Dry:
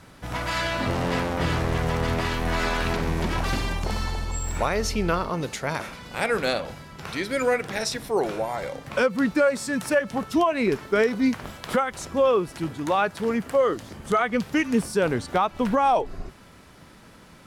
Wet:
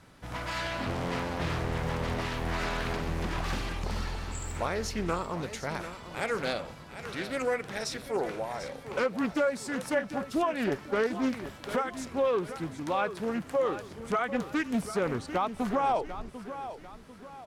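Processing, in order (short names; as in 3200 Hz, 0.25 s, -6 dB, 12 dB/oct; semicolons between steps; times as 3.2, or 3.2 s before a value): on a send: feedback echo 0.745 s, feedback 40%, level -12 dB; on the sum: Doppler distortion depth 0.41 ms; gain -7 dB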